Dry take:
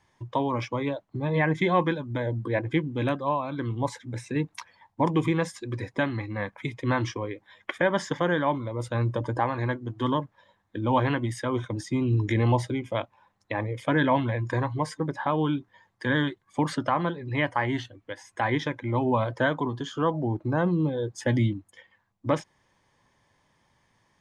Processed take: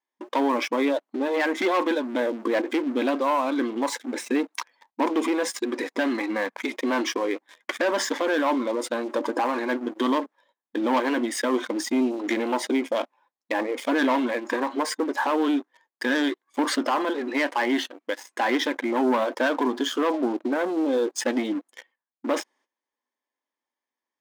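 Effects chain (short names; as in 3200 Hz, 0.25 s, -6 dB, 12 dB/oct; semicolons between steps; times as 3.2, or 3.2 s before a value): gate -58 dBFS, range -16 dB; sample leveller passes 3; limiter -16.5 dBFS, peak gain reduction 7 dB; brick-wall FIR high-pass 220 Hz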